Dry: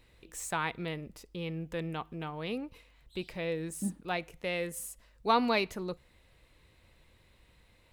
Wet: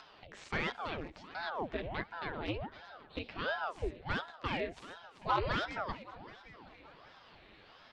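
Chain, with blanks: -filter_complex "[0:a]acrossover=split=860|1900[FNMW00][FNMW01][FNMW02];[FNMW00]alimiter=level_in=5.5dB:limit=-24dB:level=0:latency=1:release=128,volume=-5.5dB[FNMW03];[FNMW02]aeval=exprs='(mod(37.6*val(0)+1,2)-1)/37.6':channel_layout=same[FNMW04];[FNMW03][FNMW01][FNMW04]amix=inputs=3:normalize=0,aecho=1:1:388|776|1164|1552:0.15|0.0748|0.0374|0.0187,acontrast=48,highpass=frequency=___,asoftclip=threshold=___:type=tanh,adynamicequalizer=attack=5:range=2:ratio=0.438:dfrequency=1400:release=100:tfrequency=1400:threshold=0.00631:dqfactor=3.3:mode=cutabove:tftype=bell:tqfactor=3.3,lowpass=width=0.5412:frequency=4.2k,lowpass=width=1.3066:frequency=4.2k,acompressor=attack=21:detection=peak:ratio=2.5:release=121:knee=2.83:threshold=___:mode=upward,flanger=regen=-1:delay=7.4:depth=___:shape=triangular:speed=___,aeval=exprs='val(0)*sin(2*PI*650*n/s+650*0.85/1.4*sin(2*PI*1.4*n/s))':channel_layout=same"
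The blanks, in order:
130, -16.5dB, -45dB, 5.4, 1.5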